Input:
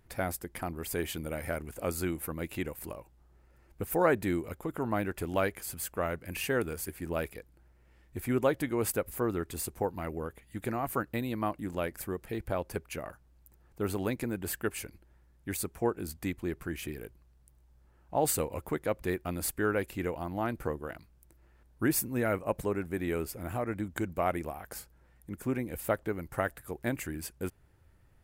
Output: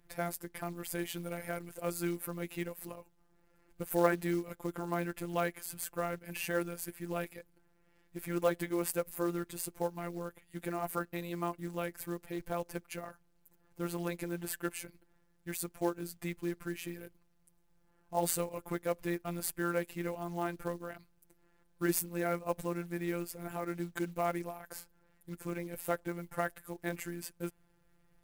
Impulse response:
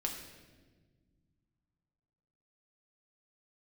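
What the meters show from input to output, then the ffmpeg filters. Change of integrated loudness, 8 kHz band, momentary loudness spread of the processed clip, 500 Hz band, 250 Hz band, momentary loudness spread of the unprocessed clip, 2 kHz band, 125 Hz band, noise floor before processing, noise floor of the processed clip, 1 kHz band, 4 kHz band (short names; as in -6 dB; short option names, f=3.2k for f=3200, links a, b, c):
-3.5 dB, -3.0 dB, 11 LU, -3.5 dB, -3.0 dB, 11 LU, -3.5 dB, -4.5 dB, -63 dBFS, -70 dBFS, -3.0 dB, -3.0 dB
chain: -af "afftfilt=real='hypot(re,im)*cos(PI*b)':imag='0':win_size=1024:overlap=0.75,acrusher=bits=5:mode=log:mix=0:aa=0.000001"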